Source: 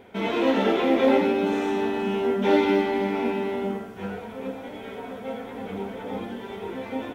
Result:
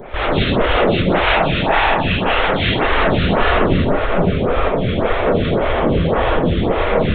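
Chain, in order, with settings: CVSD coder 32 kbps; 1.10–2.69 s: high-pass 890 Hz 12 dB/octave; compressor with a negative ratio -25 dBFS, ratio -0.5; sine folder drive 14 dB, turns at -13 dBFS; LPC vocoder at 8 kHz whisper; gated-style reverb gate 200 ms rising, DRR -5 dB; lamp-driven phase shifter 1.8 Hz; trim -1 dB

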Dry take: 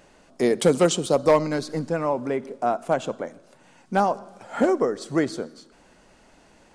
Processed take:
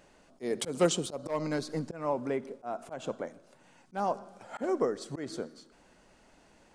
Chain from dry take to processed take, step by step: slow attack 186 ms; trim -6 dB

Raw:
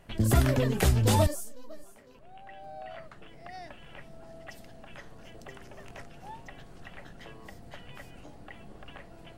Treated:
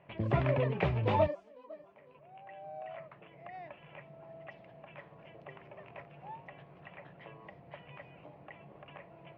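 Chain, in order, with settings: cabinet simulation 130–2700 Hz, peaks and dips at 150 Hz +8 dB, 240 Hz -9 dB, 590 Hz +6 dB, 1 kHz +6 dB, 1.5 kHz -5 dB, 2.4 kHz +6 dB; trim -4.5 dB

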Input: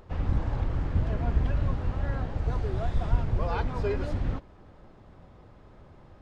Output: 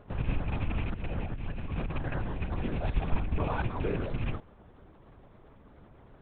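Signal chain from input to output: rattle on loud lows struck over -26 dBFS, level -28 dBFS; 0.92–2.58 s: compressor with a negative ratio -30 dBFS, ratio -1; LPC vocoder at 8 kHz whisper; trim -3 dB

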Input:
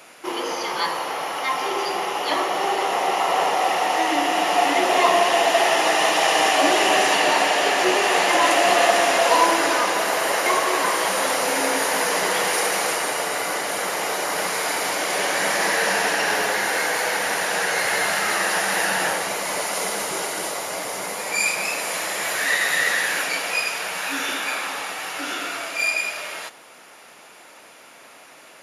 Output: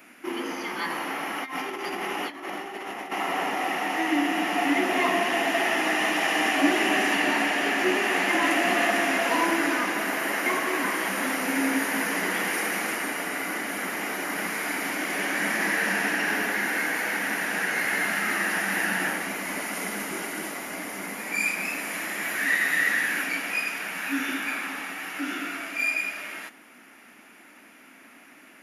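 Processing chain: ten-band graphic EQ 125 Hz -11 dB, 250 Hz +12 dB, 500 Hz -12 dB, 1 kHz -7 dB, 2 kHz +3 dB, 4 kHz -11 dB, 8 kHz -10 dB; 0.90–3.12 s: compressor with a negative ratio -32 dBFS, ratio -0.5

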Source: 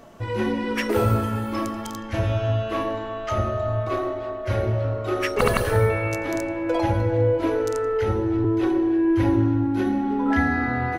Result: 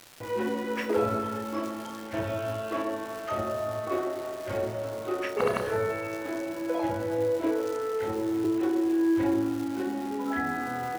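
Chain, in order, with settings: tilt EQ +3.5 dB/octave; gain riding within 3 dB 2 s; bit crusher 6-bit; band-pass filter 310 Hz, Q 0.63; crackle 380 per s -35 dBFS; on a send: flutter echo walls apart 5.3 m, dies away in 0.24 s

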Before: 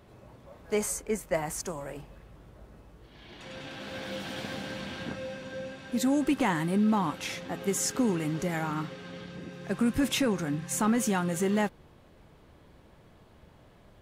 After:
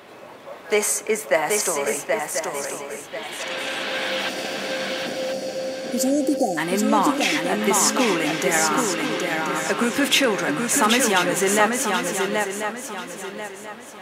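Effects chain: hum 50 Hz, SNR 28 dB; high-pass 370 Hz 12 dB/octave; peaking EQ 2.3 kHz +4.5 dB 1.6 oct; in parallel at +1 dB: compression, threshold -39 dBFS, peak gain reduction 16.5 dB; on the sum: spectral selection erased 4.29–6.58 s, 780–4300 Hz; shuffle delay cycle 1038 ms, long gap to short 3:1, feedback 33%, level -4 dB; reverberation RT60 1.6 s, pre-delay 4 ms, DRR 19 dB; trim +7.5 dB

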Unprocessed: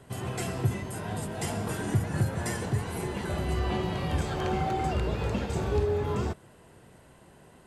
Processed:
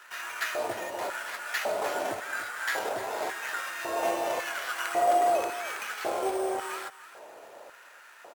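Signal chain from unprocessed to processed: peaking EQ 180 Hz -12.5 dB 0.23 oct; in parallel at +1.5 dB: compression, threshold -40 dBFS, peak gain reduction 18 dB; on the sum: sample-rate reducer 9.5 kHz, jitter 0%; LFO high-pass square 0.99 Hz 660–1600 Hz; on a send: delay 278 ms -15 dB; on the sum: speed mistake 48 kHz file played as 44.1 kHz

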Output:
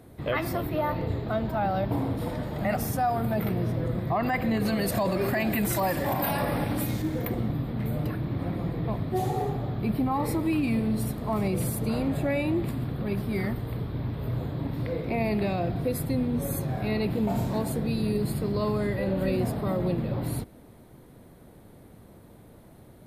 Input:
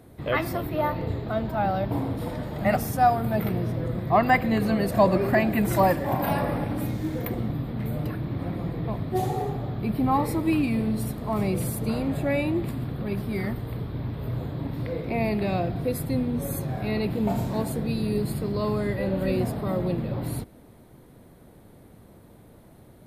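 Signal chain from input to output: 4.65–7.02 s: treble shelf 2.3 kHz +9 dB; peak limiter -18 dBFS, peak gain reduction 11 dB

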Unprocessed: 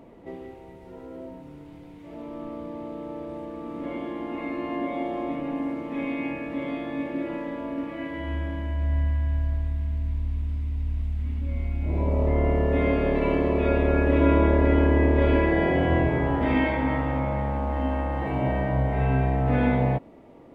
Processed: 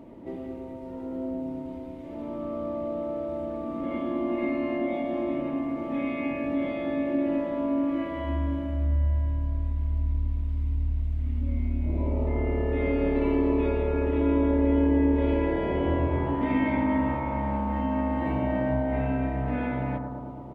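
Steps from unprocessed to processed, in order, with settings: peaking EQ 160 Hz +6 dB 2.9 oct; comb 3.3 ms, depth 32%; dynamic bell 2.3 kHz, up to +4 dB, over -40 dBFS, Q 1.1; compression 3:1, threshold -24 dBFS, peak gain reduction 11 dB; bucket-brigade echo 111 ms, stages 1024, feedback 78%, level -5 dB; trim -2.5 dB

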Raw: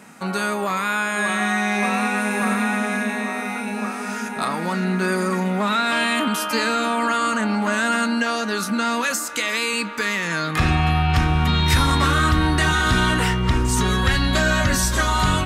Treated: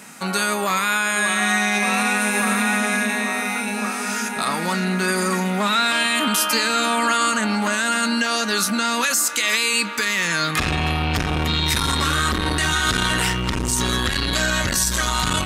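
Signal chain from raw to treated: treble shelf 2.2 kHz +10.5 dB; peak limiter -8.5 dBFS, peak gain reduction 7 dB; transformer saturation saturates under 340 Hz

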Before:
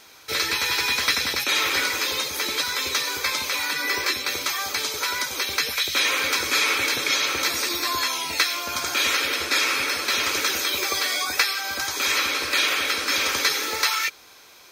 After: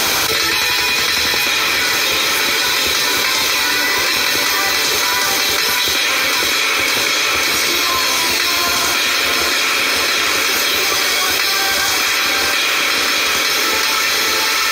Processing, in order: on a send: echo that smears into a reverb 647 ms, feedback 45%, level -3 dB; on the sum: level flattener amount 100%

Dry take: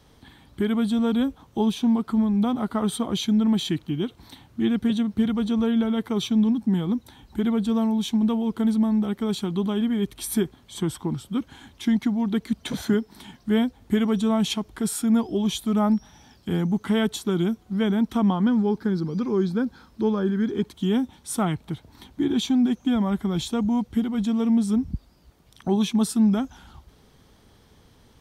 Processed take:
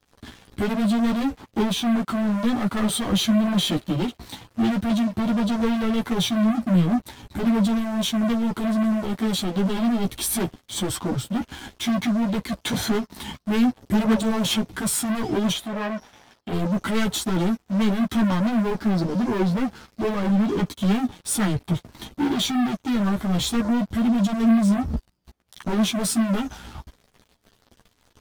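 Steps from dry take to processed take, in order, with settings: waveshaping leveller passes 5; 15.52–16.53 s: tone controls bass -10 dB, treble -10 dB; chorus voices 6, 0.59 Hz, delay 13 ms, depth 4.1 ms; trim -5.5 dB

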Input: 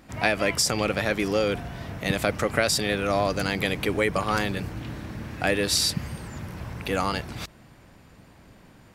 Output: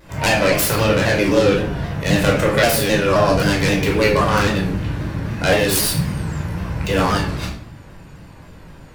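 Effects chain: self-modulated delay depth 0.17 ms; simulated room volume 940 m³, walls furnished, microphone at 5 m; vibrato with a chosen wave saw down 3.8 Hz, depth 100 cents; trim +2 dB

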